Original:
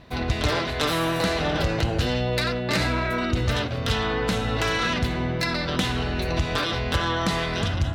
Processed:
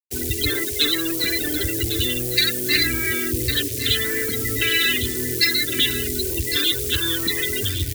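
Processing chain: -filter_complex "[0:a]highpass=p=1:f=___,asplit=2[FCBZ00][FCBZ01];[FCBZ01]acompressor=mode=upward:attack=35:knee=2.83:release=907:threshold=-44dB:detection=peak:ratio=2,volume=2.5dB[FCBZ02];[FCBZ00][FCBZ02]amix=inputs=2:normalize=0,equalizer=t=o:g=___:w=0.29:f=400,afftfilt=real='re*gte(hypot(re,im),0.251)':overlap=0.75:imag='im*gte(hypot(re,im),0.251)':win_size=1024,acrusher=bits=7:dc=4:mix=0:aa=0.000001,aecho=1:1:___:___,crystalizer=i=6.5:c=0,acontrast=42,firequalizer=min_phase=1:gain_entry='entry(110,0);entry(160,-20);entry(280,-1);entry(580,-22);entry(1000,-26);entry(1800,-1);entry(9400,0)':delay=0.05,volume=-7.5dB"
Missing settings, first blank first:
150, 13, 1104, 0.251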